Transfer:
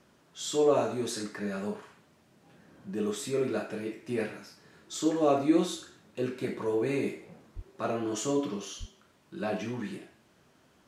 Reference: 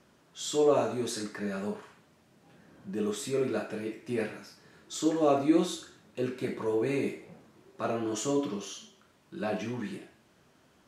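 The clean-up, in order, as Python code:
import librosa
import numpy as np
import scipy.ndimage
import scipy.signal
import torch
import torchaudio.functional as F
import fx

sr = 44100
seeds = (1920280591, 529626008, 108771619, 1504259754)

y = fx.highpass(x, sr, hz=140.0, slope=24, at=(7.55, 7.67), fade=0.02)
y = fx.highpass(y, sr, hz=140.0, slope=24, at=(8.79, 8.91), fade=0.02)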